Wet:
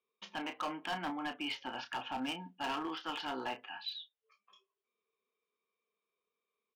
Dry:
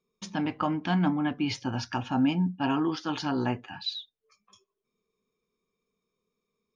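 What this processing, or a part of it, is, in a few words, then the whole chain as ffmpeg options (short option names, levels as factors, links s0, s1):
megaphone: -filter_complex "[0:a]highpass=540,lowpass=2700,equalizer=f=3000:t=o:w=0.48:g=8,asoftclip=type=hard:threshold=0.0355,asplit=2[s0][s1];[s1]adelay=31,volume=0.335[s2];[s0][s2]amix=inputs=2:normalize=0,volume=0.668"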